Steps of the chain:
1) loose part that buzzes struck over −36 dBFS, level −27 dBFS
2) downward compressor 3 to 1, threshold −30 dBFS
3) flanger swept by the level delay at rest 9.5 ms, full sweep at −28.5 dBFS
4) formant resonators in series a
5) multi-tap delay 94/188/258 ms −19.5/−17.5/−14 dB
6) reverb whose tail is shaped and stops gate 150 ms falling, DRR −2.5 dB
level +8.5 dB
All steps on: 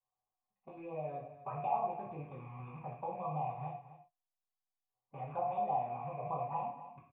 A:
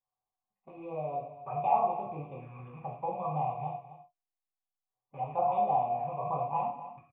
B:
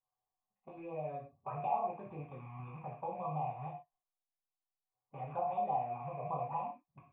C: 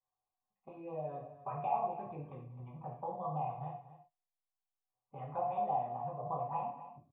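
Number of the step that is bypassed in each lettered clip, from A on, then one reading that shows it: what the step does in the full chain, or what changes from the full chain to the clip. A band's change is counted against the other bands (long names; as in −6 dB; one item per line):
2, change in momentary loudness spread +2 LU
5, change in momentary loudness spread −2 LU
1, 2 kHz band −4.5 dB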